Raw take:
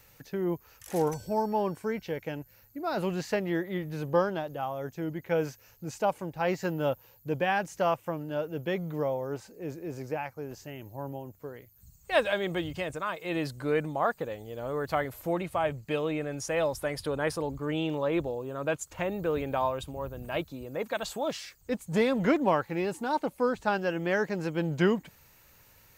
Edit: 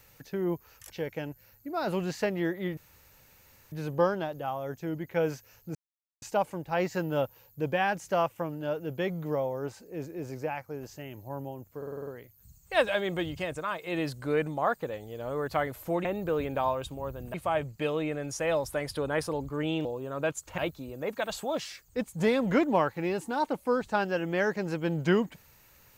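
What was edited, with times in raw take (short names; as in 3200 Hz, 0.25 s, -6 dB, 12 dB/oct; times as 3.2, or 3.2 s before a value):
0.9–2 cut
3.87 insert room tone 0.95 s
5.9 insert silence 0.47 s
11.45 stutter 0.05 s, 7 plays
17.94–18.29 cut
19.02–20.31 move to 15.43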